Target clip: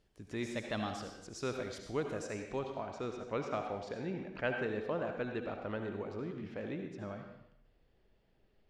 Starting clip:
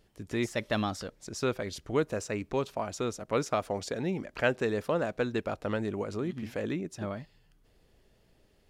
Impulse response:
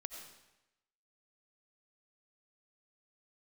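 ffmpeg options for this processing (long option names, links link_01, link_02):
-filter_complex "[0:a]asetnsamples=nb_out_samples=441:pad=0,asendcmd='2.59 lowpass f 3500',lowpass=9600[link_01];[1:a]atrim=start_sample=2205,asetrate=52920,aresample=44100[link_02];[link_01][link_02]afir=irnorm=-1:irlink=0,volume=-2dB"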